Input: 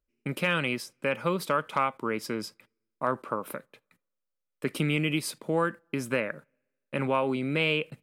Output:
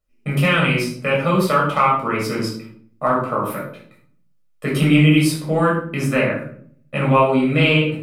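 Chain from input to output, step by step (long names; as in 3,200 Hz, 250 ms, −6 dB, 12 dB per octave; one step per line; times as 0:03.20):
rectangular room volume 740 cubic metres, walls furnished, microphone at 6.4 metres
level +2 dB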